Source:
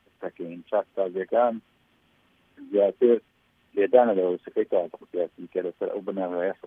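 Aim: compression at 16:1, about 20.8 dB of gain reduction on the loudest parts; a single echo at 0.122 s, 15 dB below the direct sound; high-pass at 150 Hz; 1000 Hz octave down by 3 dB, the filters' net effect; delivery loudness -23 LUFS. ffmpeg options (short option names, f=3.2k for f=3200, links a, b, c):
-af "highpass=150,equalizer=f=1k:t=o:g=-5,acompressor=threshold=-34dB:ratio=16,aecho=1:1:122:0.178,volume=17.5dB"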